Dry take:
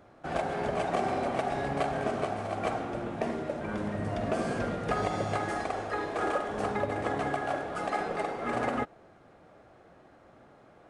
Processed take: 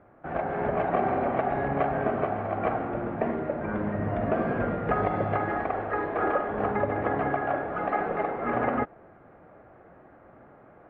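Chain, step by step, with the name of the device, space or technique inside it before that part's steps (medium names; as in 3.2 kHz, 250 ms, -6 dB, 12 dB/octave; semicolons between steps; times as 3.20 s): action camera in a waterproof case (low-pass 2.1 kHz 24 dB/octave; level rider gain up to 4 dB; AAC 64 kbps 44.1 kHz)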